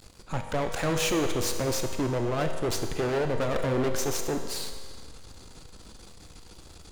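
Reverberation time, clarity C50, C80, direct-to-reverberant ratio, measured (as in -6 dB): 1.9 s, 6.5 dB, 7.5 dB, 5.0 dB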